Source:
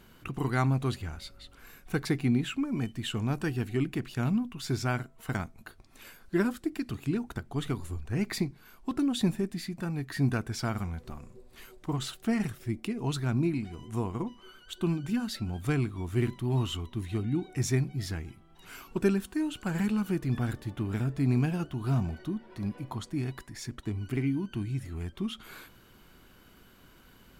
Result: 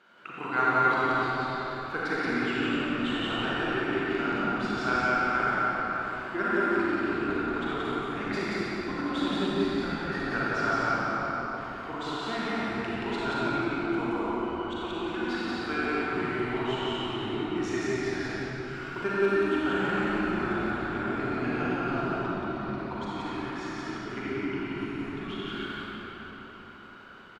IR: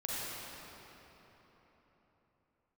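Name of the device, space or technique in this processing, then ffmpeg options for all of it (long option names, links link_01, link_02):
station announcement: -filter_complex "[0:a]highpass=410,lowpass=3600,equalizer=frequency=1400:width_type=o:width=0.28:gain=9.5,aecho=1:1:37.9|177.8:0.251|0.891[link_01];[1:a]atrim=start_sample=2205[link_02];[link_01][link_02]afir=irnorm=-1:irlink=0,asettb=1/sr,asplit=3[link_03][link_04][link_05];[link_03]atrim=end=14.124[link_06];[link_04]atrim=start=14.12:end=16.13,asetpts=PTS-STARTPTS,afade=type=in:duration=0.004:curve=qsin,afade=type=out:start_time=2.006:duration=0.004:curve=qsin,highpass=frequency=210:width=0.5412,highpass=frequency=210:width=1.3066[link_07];[link_05]atrim=start=16.126[link_08];[link_06][link_07]acrossfade=duration=0.004:curve1=hsin:curve2=qsin[link_09];[link_09][link_08]acrossfade=duration=0.004:curve1=qsin:curve2=hsin,asplit=6[link_10][link_11][link_12][link_13][link_14][link_15];[link_11]adelay=312,afreqshift=-130,volume=-15dB[link_16];[link_12]adelay=624,afreqshift=-260,volume=-20dB[link_17];[link_13]adelay=936,afreqshift=-390,volume=-25.1dB[link_18];[link_14]adelay=1248,afreqshift=-520,volume=-30.1dB[link_19];[link_15]adelay=1560,afreqshift=-650,volume=-35.1dB[link_20];[link_10][link_16][link_17][link_18][link_19][link_20]amix=inputs=6:normalize=0,volume=1dB"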